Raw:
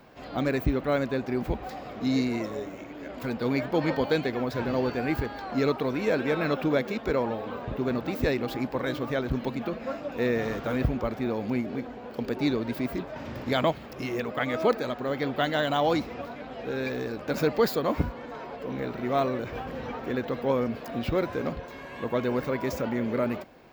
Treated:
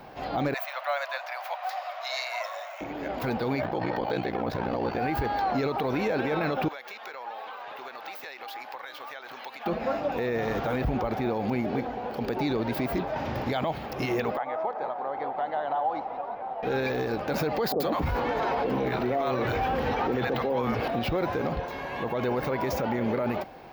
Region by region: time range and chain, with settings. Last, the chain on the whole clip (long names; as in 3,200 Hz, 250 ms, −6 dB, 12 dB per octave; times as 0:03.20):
0:00.54–0:02.81: Butterworth high-pass 610 Hz 72 dB per octave + notch filter 810 Hz, Q 5.2
0:03.61–0:04.99: high-shelf EQ 4,900 Hz −5 dB + ring modulation 30 Hz
0:06.68–0:09.66: high-pass filter 1,100 Hz + downward compressor, threshold −43 dBFS
0:14.37–0:16.63: resonant band-pass 850 Hz, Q 2.5 + downward compressor, threshold −34 dBFS + echo with shifted repeats 176 ms, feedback 63%, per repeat −44 Hz, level −12 dB
0:17.72–0:20.88: three-band delay without the direct sound mids, lows, highs 40/80 ms, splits 150/740 Hz + envelope flattener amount 50%
whole clip: thirty-one-band graphic EQ 250 Hz −4 dB, 800 Hz +9 dB, 8,000 Hz −11 dB; brickwall limiter −24.5 dBFS; level +5.5 dB